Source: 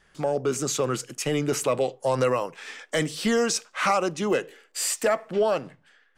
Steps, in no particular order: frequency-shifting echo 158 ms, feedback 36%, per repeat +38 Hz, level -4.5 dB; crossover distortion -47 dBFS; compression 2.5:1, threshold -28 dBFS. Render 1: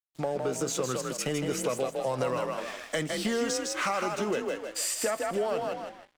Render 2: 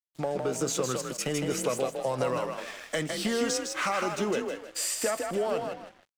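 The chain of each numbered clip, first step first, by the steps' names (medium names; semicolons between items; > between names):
frequency-shifting echo > compression > crossover distortion; compression > frequency-shifting echo > crossover distortion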